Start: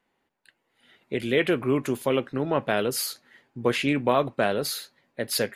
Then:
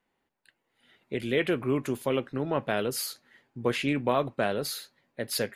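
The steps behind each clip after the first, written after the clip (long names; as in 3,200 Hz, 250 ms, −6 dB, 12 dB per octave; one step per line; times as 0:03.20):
low-shelf EQ 110 Hz +4.5 dB
level −4 dB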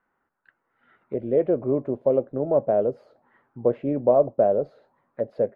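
envelope-controlled low-pass 600–1,400 Hz down, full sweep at −31.5 dBFS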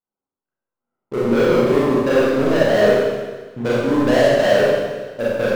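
adaptive Wiener filter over 25 samples
leveller curve on the samples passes 5
four-comb reverb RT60 1.4 s, combs from 30 ms, DRR −7.5 dB
level −10.5 dB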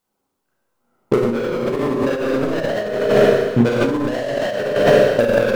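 compressor whose output falls as the input rises −26 dBFS, ratio −1
level +8 dB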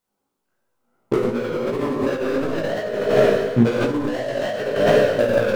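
chorus effect 2.8 Hz, delay 16 ms, depth 4.3 ms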